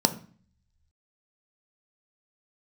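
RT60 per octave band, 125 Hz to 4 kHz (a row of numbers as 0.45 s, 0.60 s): 1.1 s, 0.70 s, 0.40 s, 0.45 s, 0.45 s, 0.45 s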